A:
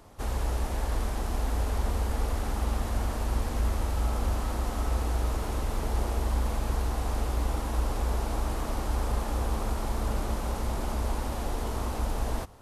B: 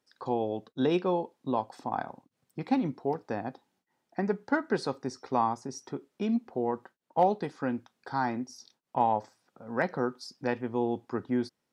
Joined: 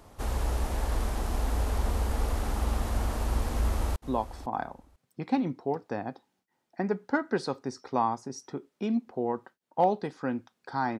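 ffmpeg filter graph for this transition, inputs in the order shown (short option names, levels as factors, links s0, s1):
-filter_complex "[0:a]apad=whole_dur=10.99,atrim=end=10.99,atrim=end=3.962[s0];[1:a]atrim=start=1.348:end=8.38[s1];[s0][s1]acrossfade=d=0.004:c1=hsin:c2=hsin,asplit=2[s2][s3];[s3]afade=t=in:st=3.52:d=0.01,afade=t=out:st=3.96:d=0.01,aecho=0:1:500|1000:0.177828|0.0266742[s4];[s2][s4]amix=inputs=2:normalize=0"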